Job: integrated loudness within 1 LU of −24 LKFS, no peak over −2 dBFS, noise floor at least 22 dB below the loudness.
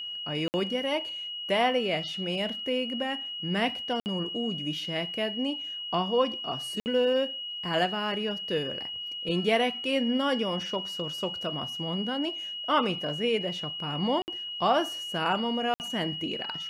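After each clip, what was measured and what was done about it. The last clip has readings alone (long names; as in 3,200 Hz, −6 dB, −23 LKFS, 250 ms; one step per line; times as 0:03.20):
number of dropouts 5; longest dropout 59 ms; interfering tone 2,900 Hz; level of the tone −34 dBFS; integrated loudness −29.0 LKFS; sample peak −12.0 dBFS; target loudness −24.0 LKFS
→ repair the gap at 0:00.48/0:04.00/0:06.80/0:14.22/0:15.74, 59 ms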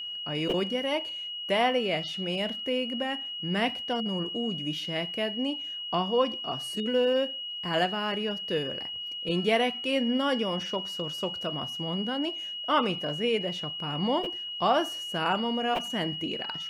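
number of dropouts 0; interfering tone 2,900 Hz; level of the tone −34 dBFS
→ notch filter 2,900 Hz, Q 30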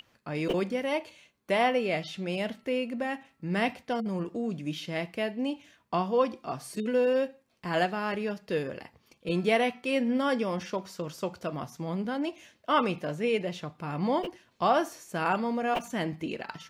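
interfering tone none found; integrated loudness −30.5 LKFS; sample peak −12.5 dBFS; target loudness −24.0 LKFS
→ level +6.5 dB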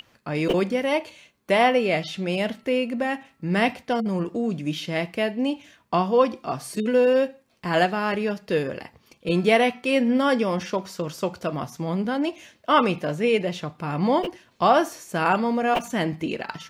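integrated loudness −24.0 LKFS; sample peak −6.0 dBFS; background noise floor −62 dBFS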